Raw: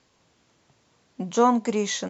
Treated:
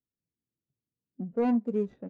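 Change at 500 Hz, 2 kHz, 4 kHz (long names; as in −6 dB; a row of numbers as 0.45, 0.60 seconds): −6.5 dB, −14.0 dB, below −25 dB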